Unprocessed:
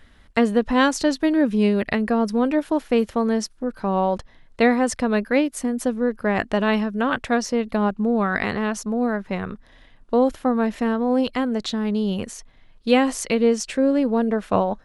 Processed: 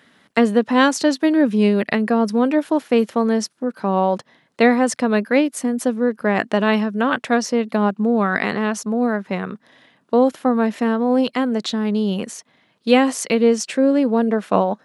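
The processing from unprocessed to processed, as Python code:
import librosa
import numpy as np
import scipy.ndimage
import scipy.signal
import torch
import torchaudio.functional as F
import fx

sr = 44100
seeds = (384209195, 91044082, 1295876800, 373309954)

y = scipy.signal.sosfilt(scipy.signal.butter(4, 150.0, 'highpass', fs=sr, output='sos'), x)
y = y * 10.0 ** (3.0 / 20.0)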